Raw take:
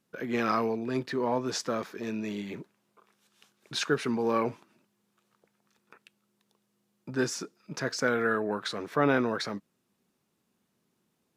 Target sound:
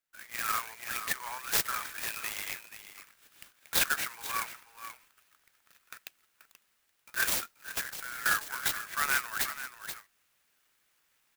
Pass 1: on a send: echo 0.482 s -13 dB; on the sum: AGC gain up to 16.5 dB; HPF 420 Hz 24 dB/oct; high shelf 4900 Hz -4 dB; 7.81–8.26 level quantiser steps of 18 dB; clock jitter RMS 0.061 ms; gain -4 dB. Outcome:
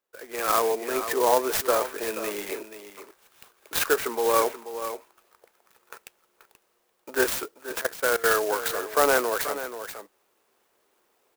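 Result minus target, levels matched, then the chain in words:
500 Hz band +19.0 dB
on a send: echo 0.482 s -13 dB; on the sum: AGC gain up to 16.5 dB; HPF 1500 Hz 24 dB/oct; high shelf 4900 Hz -4 dB; 7.81–8.26 level quantiser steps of 18 dB; clock jitter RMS 0.061 ms; gain -4 dB

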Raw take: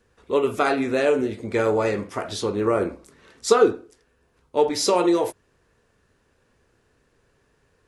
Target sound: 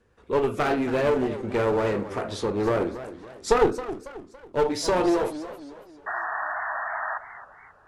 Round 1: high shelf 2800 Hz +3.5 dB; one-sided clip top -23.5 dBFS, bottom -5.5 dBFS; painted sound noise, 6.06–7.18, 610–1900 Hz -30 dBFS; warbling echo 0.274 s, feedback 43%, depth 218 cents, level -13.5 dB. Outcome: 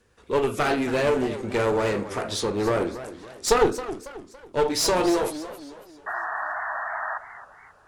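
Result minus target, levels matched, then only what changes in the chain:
4000 Hz band +6.0 dB
change: high shelf 2800 Hz -8 dB

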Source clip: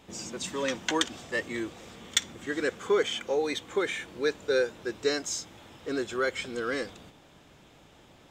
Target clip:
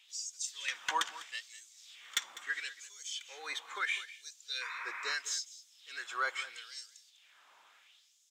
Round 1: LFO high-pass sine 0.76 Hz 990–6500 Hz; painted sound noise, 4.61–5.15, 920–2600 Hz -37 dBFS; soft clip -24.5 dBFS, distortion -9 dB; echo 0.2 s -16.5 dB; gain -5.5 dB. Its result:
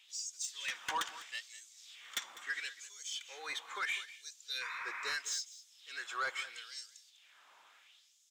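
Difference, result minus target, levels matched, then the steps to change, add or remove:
soft clip: distortion +7 dB
change: soft clip -15.5 dBFS, distortion -16 dB

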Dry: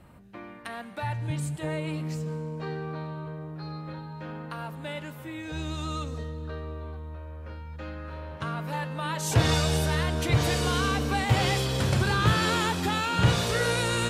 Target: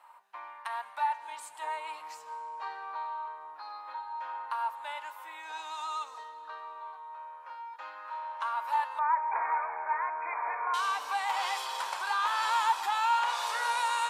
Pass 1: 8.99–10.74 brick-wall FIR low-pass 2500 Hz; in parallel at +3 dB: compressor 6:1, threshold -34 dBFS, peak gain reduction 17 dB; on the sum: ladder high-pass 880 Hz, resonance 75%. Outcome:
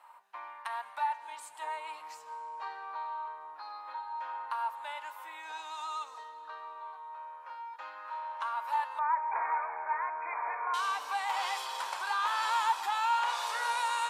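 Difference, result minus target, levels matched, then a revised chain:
compressor: peak gain reduction +5 dB
8.99–10.74 brick-wall FIR low-pass 2500 Hz; in parallel at +3 dB: compressor 6:1, threshold -28 dBFS, peak gain reduction 12 dB; on the sum: ladder high-pass 880 Hz, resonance 75%

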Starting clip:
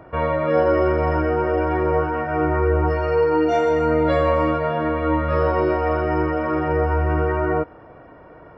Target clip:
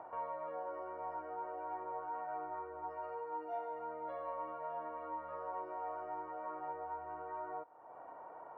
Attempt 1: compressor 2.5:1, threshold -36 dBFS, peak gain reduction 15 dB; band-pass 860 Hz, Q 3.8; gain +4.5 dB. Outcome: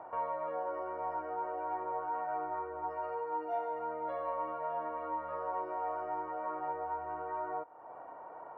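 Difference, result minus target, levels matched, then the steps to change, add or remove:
compressor: peak gain reduction -5.5 dB
change: compressor 2.5:1, threshold -45.5 dBFS, peak gain reduction 20.5 dB

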